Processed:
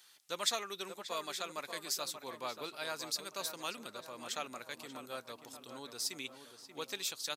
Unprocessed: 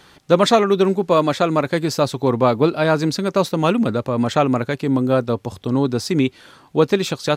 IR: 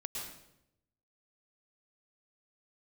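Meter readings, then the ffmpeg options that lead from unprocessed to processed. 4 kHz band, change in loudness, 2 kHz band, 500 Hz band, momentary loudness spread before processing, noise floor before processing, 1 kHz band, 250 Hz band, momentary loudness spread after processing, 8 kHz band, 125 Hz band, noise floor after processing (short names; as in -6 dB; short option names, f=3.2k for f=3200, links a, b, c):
-10.5 dB, -21.5 dB, -16.5 dB, -27.5 dB, 5 LU, -50 dBFS, -21.5 dB, -33.0 dB, 11 LU, -6.0 dB, -38.5 dB, -61 dBFS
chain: -filter_complex "[0:a]aderivative,asplit=2[a][b];[b]adelay=584,lowpass=f=2k:p=1,volume=-8.5dB,asplit=2[c][d];[d]adelay=584,lowpass=f=2k:p=1,volume=0.55,asplit=2[e][f];[f]adelay=584,lowpass=f=2k:p=1,volume=0.55,asplit=2[g][h];[h]adelay=584,lowpass=f=2k:p=1,volume=0.55,asplit=2[i][j];[j]adelay=584,lowpass=f=2k:p=1,volume=0.55,asplit=2[k][l];[l]adelay=584,lowpass=f=2k:p=1,volume=0.55,asplit=2[m][n];[n]adelay=584,lowpass=f=2k:p=1,volume=0.55[o];[c][e][g][i][k][m][o]amix=inputs=7:normalize=0[p];[a][p]amix=inputs=2:normalize=0,volume=-5.5dB"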